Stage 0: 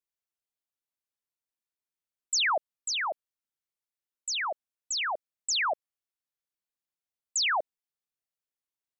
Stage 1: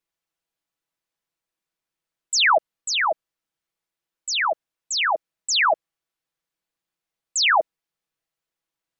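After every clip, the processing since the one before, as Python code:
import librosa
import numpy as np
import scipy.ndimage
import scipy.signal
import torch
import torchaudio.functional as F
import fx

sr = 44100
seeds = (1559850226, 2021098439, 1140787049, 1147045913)

y = fx.high_shelf(x, sr, hz=5500.0, db=-8.5)
y = y + 0.5 * np.pad(y, (int(6.1 * sr / 1000.0), 0))[:len(y)]
y = F.gain(torch.from_numpy(y), 9.0).numpy()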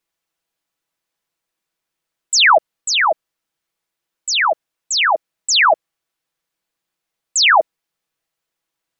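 y = fx.low_shelf(x, sr, hz=200.0, db=-3.0)
y = F.gain(torch.from_numpy(y), 6.5).numpy()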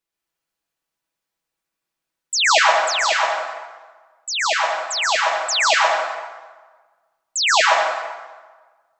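y = fx.rev_plate(x, sr, seeds[0], rt60_s=1.4, hf_ratio=0.7, predelay_ms=105, drr_db=-3.0)
y = F.gain(torch.from_numpy(y), -6.5).numpy()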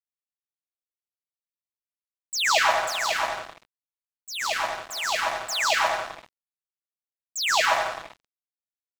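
y = np.sign(x) * np.maximum(np.abs(x) - 10.0 ** (-28.0 / 20.0), 0.0)
y = F.gain(torch.from_numpy(y), -4.5).numpy()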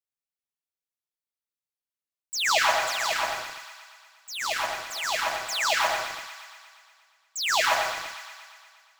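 y = fx.block_float(x, sr, bits=5)
y = fx.echo_wet_highpass(y, sr, ms=118, feedback_pct=69, hz=1400.0, wet_db=-8)
y = F.gain(torch.from_numpy(y), -2.0).numpy()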